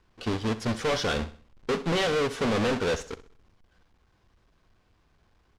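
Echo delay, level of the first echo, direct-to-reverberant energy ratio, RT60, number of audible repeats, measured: 64 ms, -15.5 dB, no reverb, no reverb, 3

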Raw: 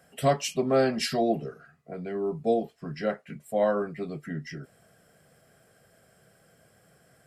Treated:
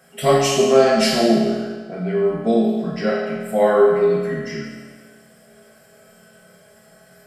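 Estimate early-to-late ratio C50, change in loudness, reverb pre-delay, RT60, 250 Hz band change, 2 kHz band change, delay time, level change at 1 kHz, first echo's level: 0.0 dB, +10.5 dB, 5 ms, 1.5 s, +11.0 dB, +10.5 dB, no echo, +9.0 dB, no echo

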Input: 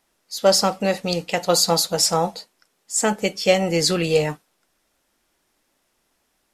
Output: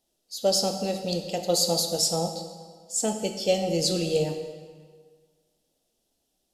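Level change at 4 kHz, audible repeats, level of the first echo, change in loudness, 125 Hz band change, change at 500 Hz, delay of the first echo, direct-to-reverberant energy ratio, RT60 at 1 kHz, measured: -5.0 dB, no echo, no echo, -6.0 dB, -5.0 dB, -5.5 dB, no echo, 5.5 dB, 1.7 s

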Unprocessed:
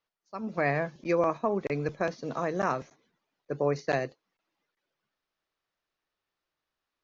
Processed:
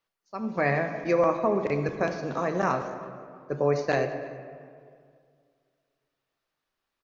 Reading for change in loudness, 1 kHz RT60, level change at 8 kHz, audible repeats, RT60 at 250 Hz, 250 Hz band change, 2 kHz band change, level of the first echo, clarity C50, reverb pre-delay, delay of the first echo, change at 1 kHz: +3.0 dB, 2.0 s, no reading, 1, 2.3 s, +3.0 dB, +3.0 dB, -22.5 dB, 8.0 dB, 5 ms, 325 ms, +3.0 dB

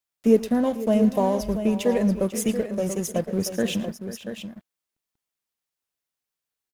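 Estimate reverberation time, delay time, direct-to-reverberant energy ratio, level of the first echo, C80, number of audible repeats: no reverb, 113 ms, no reverb, -18.0 dB, no reverb, 3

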